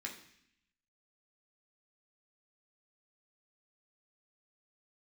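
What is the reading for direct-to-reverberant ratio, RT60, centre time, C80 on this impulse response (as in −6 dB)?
−1.0 dB, 0.70 s, 21 ms, 11.5 dB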